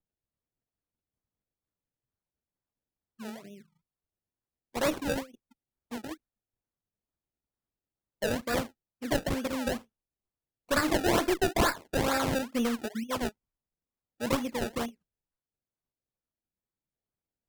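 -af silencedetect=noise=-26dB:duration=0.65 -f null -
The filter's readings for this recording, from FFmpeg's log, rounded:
silence_start: 0.00
silence_end: 4.77 | silence_duration: 4.77
silence_start: 5.19
silence_end: 8.23 | silence_duration: 3.04
silence_start: 9.72
silence_end: 10.71 | silence_duration: 0.99
silence_start: 13.27
silence_end: 14.23 | silence_duration: 0.96
silence_start: 14.85
silence_end: 17.49 | silence_duration: 2.64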